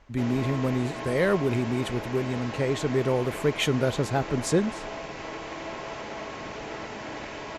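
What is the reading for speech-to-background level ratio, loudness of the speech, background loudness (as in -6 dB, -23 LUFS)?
9.5 dB, -27.0 LUFS, -36.5 LUFS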